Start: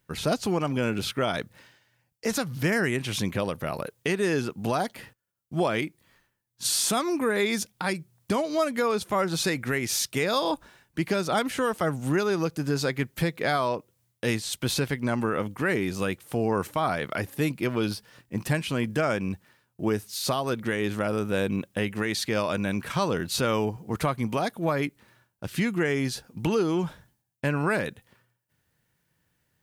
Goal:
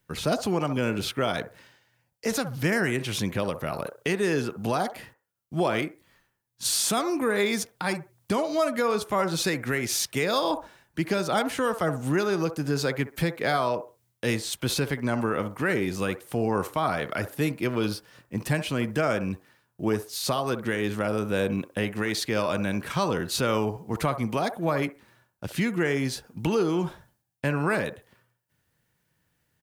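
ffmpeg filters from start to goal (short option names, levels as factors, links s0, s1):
-filter_complex "[0:a]acrossover=split=380|1500|2000[s0][s1][s2][s3];[s1]aecho=1:1:64|128|192:0.447|0.107|0.0257[s4];[s3]acrusher=bits=5:mode=log:mix=0:aa=0.000001[s5];[s0][s4][s2][s5]amix=inputs=4:normalize=0"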